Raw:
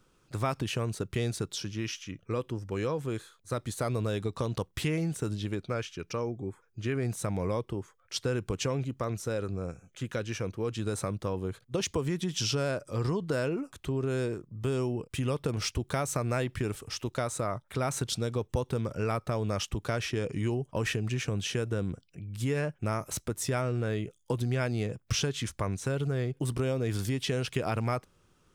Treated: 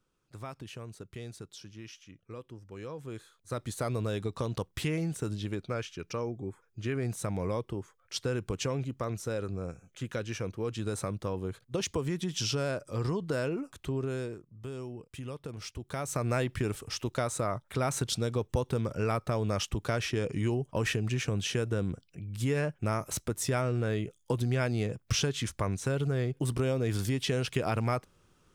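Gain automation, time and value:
2.72 s -12 dB
3.65 s -1.5 dB
13.98 s -1.5 dB
14.55 s -10 dB
15.74 s -10 dB
16.26 s +0.5 dB

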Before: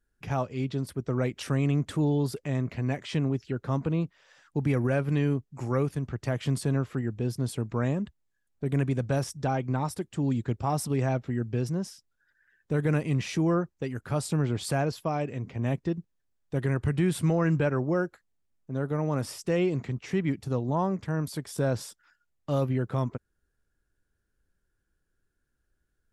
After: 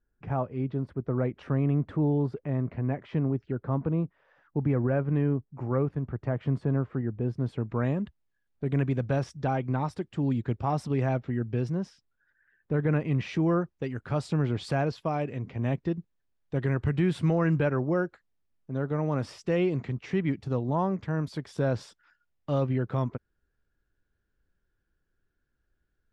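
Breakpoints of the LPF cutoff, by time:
7.17 s 1400 Hz
8.01 s 3600 Hz
11.67 s 3600 Hz
12.74 s 2000 Hz
13.64 s 4100 Hz

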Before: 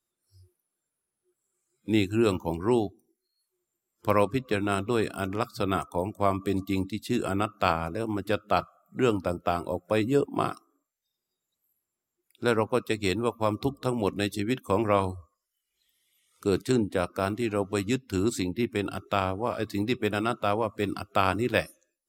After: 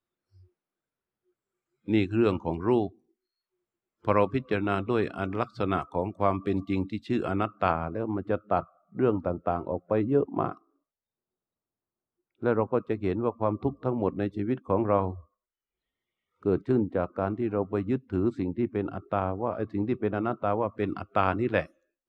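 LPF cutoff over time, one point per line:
7.29 s 2700 Hz
8.15 s 1200 Hz
20.39 s 1200 Hz
20.85 s 2000 Hz

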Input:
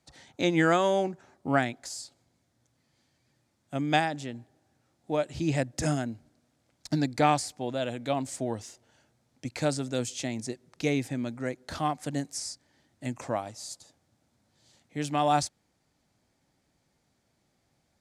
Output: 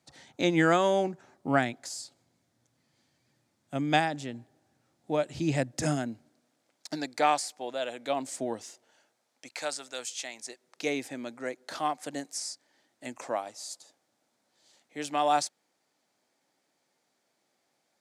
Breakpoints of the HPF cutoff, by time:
5.77 s 110 Hz
7.05 s 460 Hz
7.91 s 460 Hz
8.42 s 220 Hz
9.73 s 840 Hz
10.41 s 840 Hz
10.9 s 360 Hz

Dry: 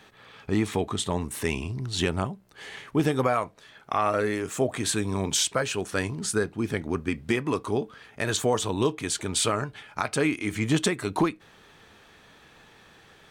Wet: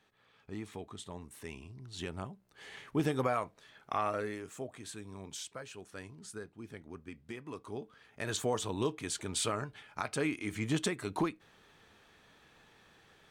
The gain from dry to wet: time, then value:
1.75 s -17.5 dB
2.83 s -7.5 dB
3.97 s -7.5 dB
4.8 s -19 dB
7.35 s -19 dB
8.37 s -8.5 dB

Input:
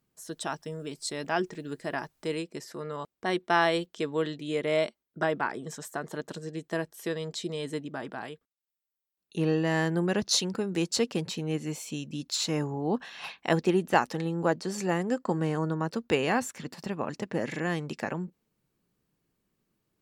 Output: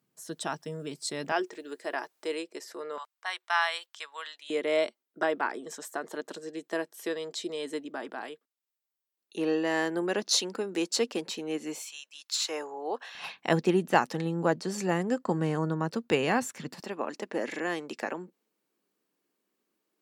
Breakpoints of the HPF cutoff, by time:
HPF 24 dB/oct
120 Hz
from 1.32 s 330 Hz
from 2.98 s 910 Hz
from 4.5 s 260 Hz
from 11.83 s 1000 Hz
from 12.49 s 430 Hz
from 13.15 s 110 Hz
from 16.8 s 260 Hz

